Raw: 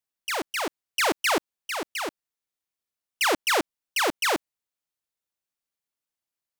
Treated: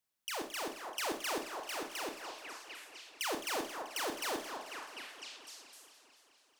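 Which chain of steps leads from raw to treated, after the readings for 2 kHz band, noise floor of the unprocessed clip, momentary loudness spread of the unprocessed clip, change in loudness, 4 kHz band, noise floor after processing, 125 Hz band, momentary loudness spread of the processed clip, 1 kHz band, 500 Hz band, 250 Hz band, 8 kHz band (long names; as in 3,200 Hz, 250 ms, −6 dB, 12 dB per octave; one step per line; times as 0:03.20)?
−13.5 dB, below −85 dBFS, 9 LU, −13.0 dB, −10.5 dB, −71 dBFS, −11.0 dB, 13 LU, −11.5 dB, −11.0 dB, −11.0 dB, −9.5 dB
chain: on a send: echo through a band-pass that steps 251 ms, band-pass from 820 Hz, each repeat 0.7 octaves, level −9.5 dB
on the sum: downward compressor 2 to 1, threshold −47 dBFS, peak gain reduction 14.5 dB
dynamic equaliser 2,000 Hz, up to −5 dB, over −50 dBFS, Q 0.75
four-comb reverb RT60 0.37 s, combs from 26 ms, DRR 4.5 dB
feedback echo with a swinging delay time 217 ms, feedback 69%, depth 201 cents, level −12 dB
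level +1.5 dB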